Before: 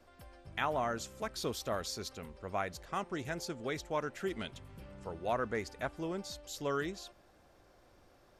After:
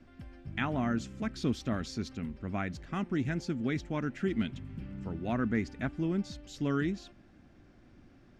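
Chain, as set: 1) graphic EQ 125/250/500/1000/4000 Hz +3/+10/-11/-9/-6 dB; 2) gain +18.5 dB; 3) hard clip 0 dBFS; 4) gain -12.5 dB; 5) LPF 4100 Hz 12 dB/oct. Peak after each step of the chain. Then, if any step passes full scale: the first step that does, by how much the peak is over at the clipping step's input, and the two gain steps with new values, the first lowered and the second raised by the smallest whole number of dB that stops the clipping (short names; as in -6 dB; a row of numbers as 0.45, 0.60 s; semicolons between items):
-23.5, -5.0, -5.0, -17.5, -18.0 dBFS; no overload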